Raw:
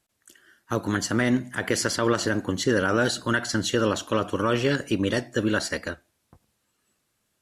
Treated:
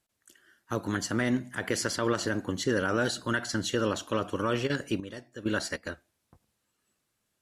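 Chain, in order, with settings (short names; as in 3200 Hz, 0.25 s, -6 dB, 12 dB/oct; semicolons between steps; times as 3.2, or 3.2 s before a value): 4.66–5.84 step gate "xx..xx..." 99 bpm -12 dB; gain -5 dB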